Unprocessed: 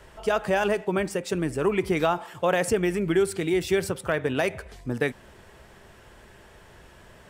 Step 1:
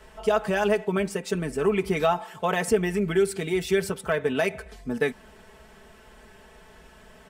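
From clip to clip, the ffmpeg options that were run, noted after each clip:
-af "aecho=1:1:4.6:0.71,volume=-2dB"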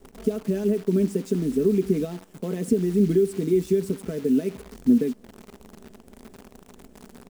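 -af "alimiter=limit=-17.5dB:level=0:latency=1:release=433,firequalizer=gain_entry='entry(110,0);entry(250,15);entry(780,-18);entry(6700,-4)':delay=0.05:min_phase=1,acrusher=bits=8:dc=4:mix=0:aa=0.000001"

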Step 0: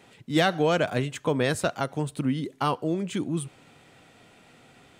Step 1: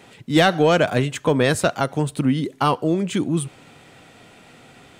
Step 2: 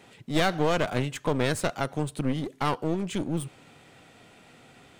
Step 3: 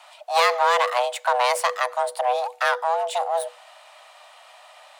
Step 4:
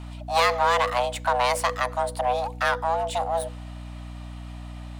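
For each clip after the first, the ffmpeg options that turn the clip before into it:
-af "acontrast=84"
-af "aeval=exprs='clip(val(0),-1,0.0447)':c=same,volume=-6dB"
-af "afreqshift=490,volume=5dB"
-af "aeval=exprs='val(0)+0.02*(sin(2*PI*60*n/s)+sin(2*PI*2*60*n/s)/2+sin(2*PI*3*60*n/s)/3+sin(2*PI*4*60*n/s)/4+sin(2*PI*5*60*n/s)/5)':c=same,volume=-2dB"

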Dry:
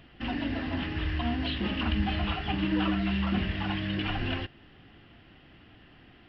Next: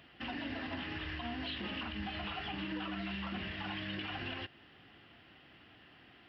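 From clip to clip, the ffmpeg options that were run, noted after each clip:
-af "lowshelf=f=390:g=-8.5,alimiter=level_in=6dB:limit=-24dB:level=0:latency=1:release=105,volume=-6dB,highpass=67,volume=-1dB"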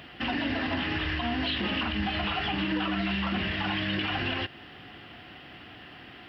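-filter_complex "[0:a]asplit=2[a][b];[b]alimiter=level_in=12dB:limit=-24dB:level=0:latency=1,volume=-12dB,volume=-2.5dB[c];[a][c]amix=inputs=2:normalize=0,aeval=exprs='val(0)+0.000501*sin(2*PI*730*n/s)':c=same,volume=7.5dB"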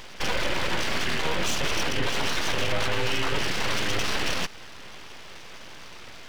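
-af "aeval=exprs='abs(val(0))':c=same,volume=6dB"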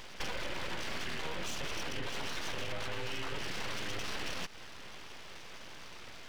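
-af "acompressor=threshold=-27dB:ratio=6,volume=-5.5dB"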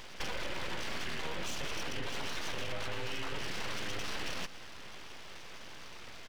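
-af "aecho=1:1:118:0.168"

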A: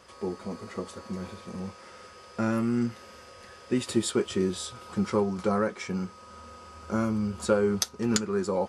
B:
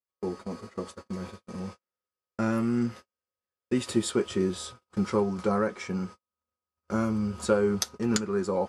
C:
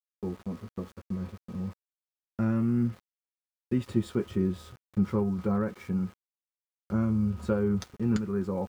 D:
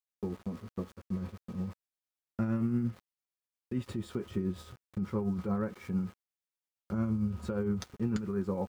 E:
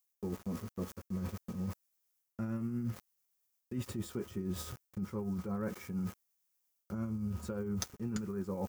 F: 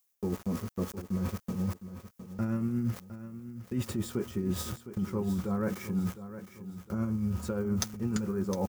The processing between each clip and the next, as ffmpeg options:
-af "agate=range=-48dB:threshold=-40dB:ratio=16:detection=peak,adynamicequalizer=threshold=0.00631:dfrequency=2400:dqfactor=0.7:tfrequency=2400:tqfactor=0.7:attack=5:release=100:ratio=0.375:range=1.5:mode=cutabove:tftype=highshelf"
-af "bass=f=250:g=13,treble=f=4k:g=-12,aeval=exprs='val(0)*gte(abs(val(0)),0.00708)':c=same,volume=-7dB"
-af "alimiter=limit=-21.5dB:level=0:latency=1:release=138,tremolo=f=8.7:d=0.42"
-af "areverse,acompressor=threshold=-39dB:ratio=6,areverse,aexciter=amount=2.5:drive=5.4:freq=5.4k,volume=4.5dB"
-af "aecho=1:1:710|1420|2130|2840:0.237|0.0949|0.0379|0.0152,volume=6dB"

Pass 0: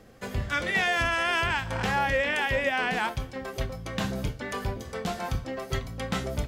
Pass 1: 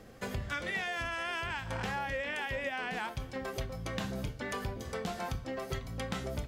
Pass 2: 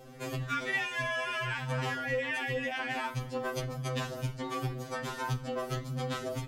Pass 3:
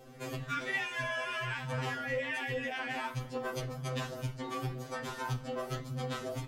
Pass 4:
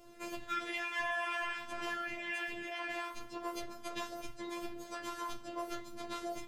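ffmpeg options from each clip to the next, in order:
-af "acompressor=threshold=-34dB:ratio=4"
-af "aeval=exprs='val(0)*sin(2*PI*21*n/s)':c=same,equalizer=f=250:w=1.5:g=3,afftfilt=real='re*2.45*eq(mod(b,6),0)':imag='im*2.45*eq(mod(b,6),0)':win_size=2048:overlap=0.75,volume=7.5dB"
-af "flanger=delay=2.7:depth=9.6:regen=-80:speed=1.2:shape=triangular,volume=2dB"
-af "afftfilt=real='hypot(re,im)*cos(PI*b)':imag='0':win_size=512:overlap=0.75,volume=1.5dB"

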